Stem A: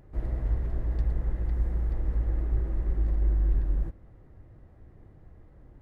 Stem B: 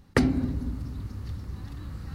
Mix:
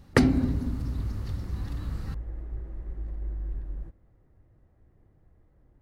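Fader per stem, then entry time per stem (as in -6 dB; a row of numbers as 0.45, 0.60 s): -9.0, +2.0 dB; 0.00, 0.00 s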